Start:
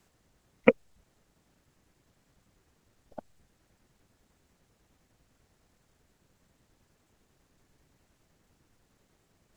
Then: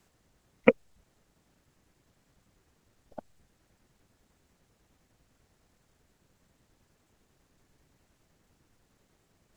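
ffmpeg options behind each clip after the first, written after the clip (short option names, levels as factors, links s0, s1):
-af anull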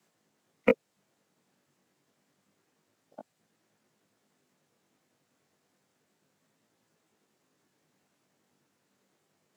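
-filter_complex "[0:a]flanger=delay=18.5:depth=2.5:speed=0.29,acrossover=split=140|510|780[s0][s1][s2][s3];[s0]acrusher=bits=6:mix=0:aa=0.000001[s4];[s4][s1][s2][s3]amix=inputs=4:normalize=0"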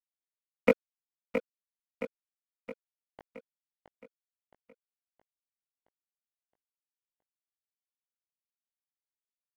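-filter_complex "[0:a]aeval=exprs='sgn(val(0))*max(abs(val(0))-0.0112,0)':c=same,asplit=2[s0][s1];[s1]aecho=0:1:669|1338|2007|2676|3345|4014:0.398|0.203|0.104|0.0528|0.0269|0.0137[s2];[s0][s2]amix=inputs=2:normalize=0"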